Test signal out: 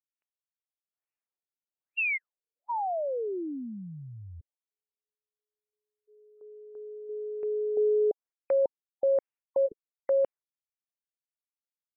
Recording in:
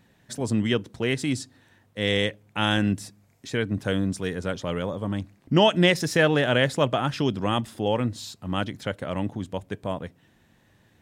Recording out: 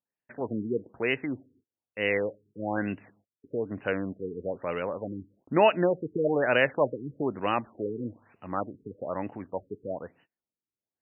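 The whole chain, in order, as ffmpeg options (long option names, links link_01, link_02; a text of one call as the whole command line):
ffmpeg -i in.wav -af "agate=range=-32dB:threshold=-52dB:ratio=16:detection=peak,bass=frequency=250:gain=-14,treble=frequency=4000:gain=14,afftfilt=real='re*lt(b*sr/1024,440*pow(3000/440,0.5+0.5*sin(2*PI*1.1*pts/sr)))':imag='im*lt(b*sr/1024,440*pow(3000/440,0.5+0.5*sin(2*PI*1.1*pts/sr)))':win_size=1024:overlap=0.75" out.wav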